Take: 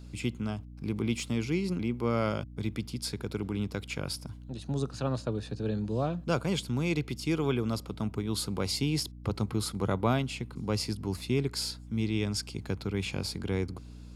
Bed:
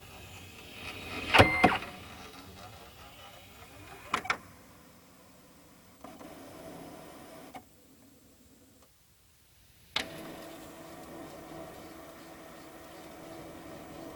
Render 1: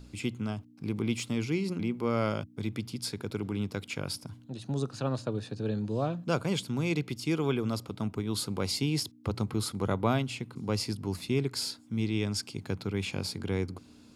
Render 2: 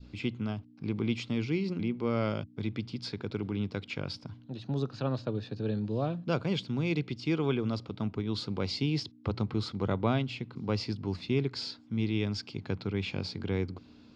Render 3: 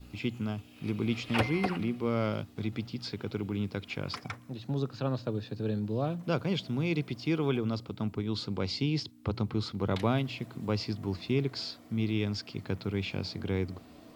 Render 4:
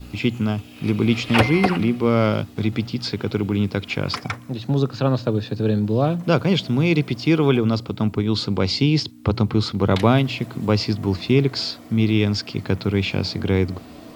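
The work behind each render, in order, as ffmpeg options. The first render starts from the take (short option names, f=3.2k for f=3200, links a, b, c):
-af "bandreject=f=60:t=h:w=4,bandreject=f=120:t=h:w=4,bandreject=f=180:t=h:w=4"
-af "lowpass=f=4.8k:w=0.5412,lowpass=f=4.8k:w=1.3066,adynamicequalizer=threshold=0.00501:dfrequency=1100:dqfactor=0.78:tfrequency=1100:tqfactor=0.78:attack=5:release=100:ratio=0.375:range=2:mode=cutabove:tftype=bell"
-filter_complex "[1:a]volume=-10.5dB[a];[0:a][a]amix=inputs=2:normalize=0"
-af "volume=12dB,alimiter=limit=-2dB:level=0:latency=1"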